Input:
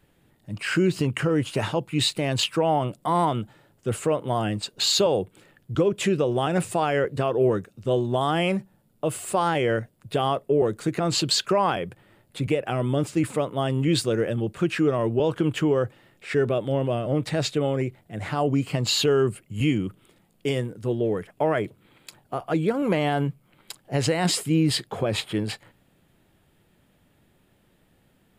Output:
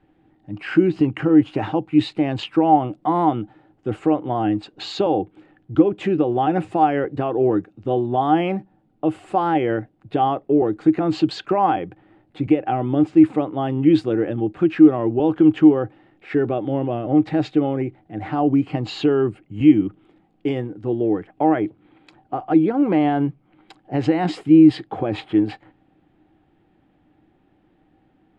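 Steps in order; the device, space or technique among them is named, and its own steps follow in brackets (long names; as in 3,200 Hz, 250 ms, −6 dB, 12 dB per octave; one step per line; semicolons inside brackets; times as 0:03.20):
inside a cardboard box (low-pass filter 2,600 Hz 12 dB per octave; hollow resonant body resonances 310/770 Hz, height 15 dB, ringing for 70 ms)
level −1 dB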